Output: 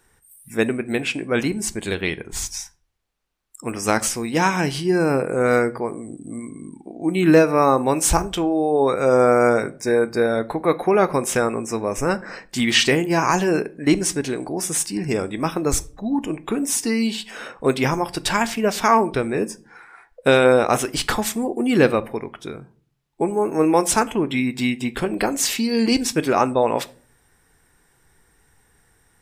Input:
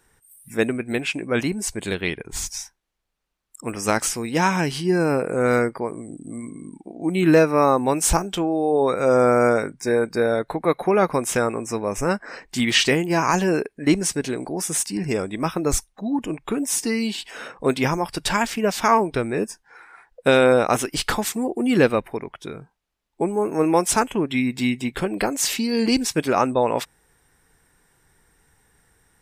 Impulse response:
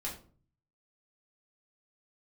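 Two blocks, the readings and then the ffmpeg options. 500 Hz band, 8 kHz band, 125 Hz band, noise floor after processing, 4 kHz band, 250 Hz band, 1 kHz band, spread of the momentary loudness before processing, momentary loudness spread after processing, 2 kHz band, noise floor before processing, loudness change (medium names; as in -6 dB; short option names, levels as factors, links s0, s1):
+1.5 dB, +1.0 dB, +0.5 dB, -61 dBFS, +1.0 dB, +1.5 dB, +1.5 dB, 13 LU, 13 LU, +1.5 dB, -68 dBFS, +1.5 dB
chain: -filter_complex "[0:a]asplit=2[s0][s1];[1:a]atrim=start_sample=2205[s2];[s1][s2]afir=irnorm=-1:irlink=0,volume=0.237[s3];[s0][s3]amix=inputs=2:normalize=0"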